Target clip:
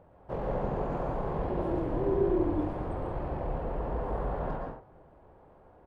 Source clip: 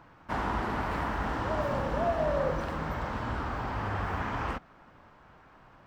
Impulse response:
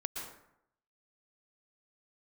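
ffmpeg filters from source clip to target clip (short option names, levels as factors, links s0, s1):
-filter_complex "[0:a]highshelf=f=4400:g=-9,asetrate=25476,aresample=44100,atempo=1.73107[s0];[1:a]atrim=start_sample=2205,afade=t=out:st=0.29:d=0.01,atrim=end_sample=13230[s1];[s0][s1]afir=irnorm=-1:irlink=0"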